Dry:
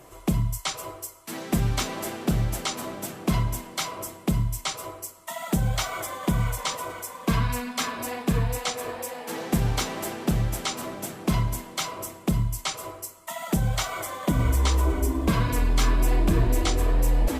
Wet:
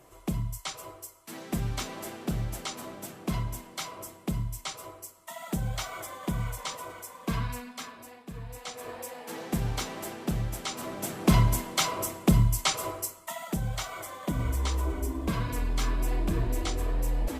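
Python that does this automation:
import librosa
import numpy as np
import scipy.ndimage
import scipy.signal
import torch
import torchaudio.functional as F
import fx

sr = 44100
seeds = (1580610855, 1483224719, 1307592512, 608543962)

y = fx.gain(x, sr, db=fx.line((7.45, -7.0), (8.28, -19.0), (8.94, -6.0), (10.64, -6.0), (11.28, 3.0), (13.07, 3.0), (13.52, -7.0)))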